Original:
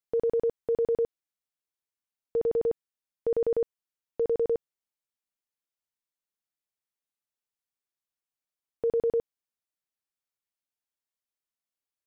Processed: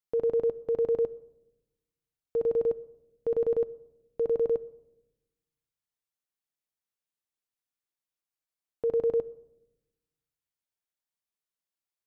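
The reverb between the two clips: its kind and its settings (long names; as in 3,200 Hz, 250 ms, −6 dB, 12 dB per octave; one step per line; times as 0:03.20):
rectangular room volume 3,400 cubic metres, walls furnished, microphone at 0.5 metres
level −2 dB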